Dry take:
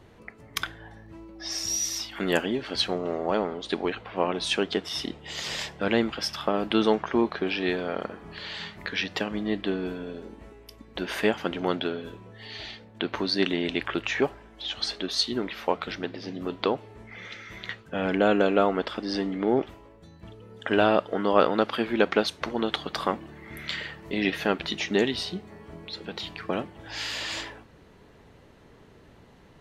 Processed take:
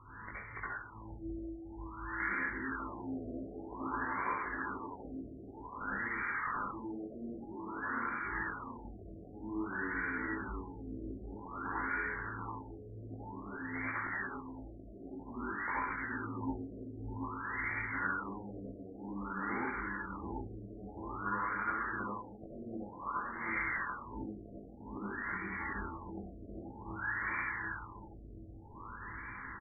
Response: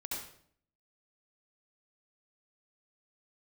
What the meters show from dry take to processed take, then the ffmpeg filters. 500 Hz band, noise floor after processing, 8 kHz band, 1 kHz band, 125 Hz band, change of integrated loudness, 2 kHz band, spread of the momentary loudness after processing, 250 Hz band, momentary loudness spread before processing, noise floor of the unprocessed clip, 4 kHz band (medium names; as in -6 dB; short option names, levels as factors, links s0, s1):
-21.0 dB, -51 dBFS, under -40 dB, -7.0 dB, -8.0 dB, -12.0 dB, -4.0 dB, 13 LU, -13.0 dB, 16 LU, -53 dBFS, under -40 dB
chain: -filter_complex "[0:a]firequalizer=gain_entry='entry(120,0);entry(170,-10);entry(260,-4);entry(630,-18);entry(1000,9);entry(1500,14);entry(4400,-1);entry(7400,-11);entry(11000,2)':delay=0.05:min_phase=1,acrossover=split=6200[s0][s1];[s0]acompressor=threshold=0.0158:ratio=10[s2];[s1]tremolo=f=5:d=0.8[s3];[s2][s3]amix=inputs=2:normalize=0,aeval=exprs='(mod(15*val(0)+1,2)-1)/15':c=same,flanger=delay=19:depth=2.7:speed=0.37,aeval=exprs='(mod(22.4*val(0)+1,2)-1)/22.4':c=same,aecho=1:1:732|1464|2196|2928|3660|4392|5124:0.596|0.322|0.174|0.0938|0.0506|0.0274|0.0148[s4];[1:a]atrim=start_sample=2205[s5];[s4][s5]afir=irnorm=-1:irlink=0,afftfilt=real='re*lt(b*sr/1024,700*pow(2400/700,0.5+0.5*sin(2*PI*0.52*pts/sr)))':imag='im*lt(b*sr/1024,700*pow(2400/700,0.5+0.5*sin(2*PI*0.52*pts/sr)))':win_size=1024:overlap=0.75,volume=1.88"